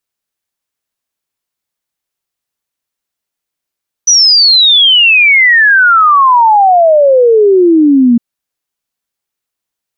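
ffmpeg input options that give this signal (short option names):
-f lavfi -i "aevalsrc='0.708*clip(min(t,4.11-t)/0.01,0,1)*sin(2*PI*6000*4.11/log(230/6000)*(exp(log(230/6000)*t/4.11)-1))':d=4.11:s=44100"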